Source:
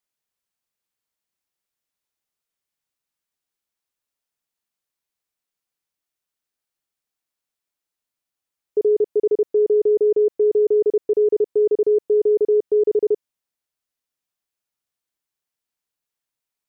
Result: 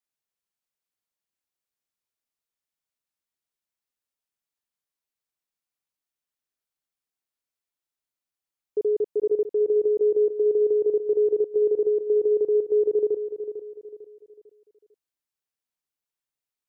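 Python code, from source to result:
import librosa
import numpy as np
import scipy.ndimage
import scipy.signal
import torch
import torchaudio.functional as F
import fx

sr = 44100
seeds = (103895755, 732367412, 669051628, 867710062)

y = fx.echo_feedback(x, sr, ms=449, feedback_pct=37, wet_db=-10.5)
y = y * 10.0 ** (-6.0 / 20.0)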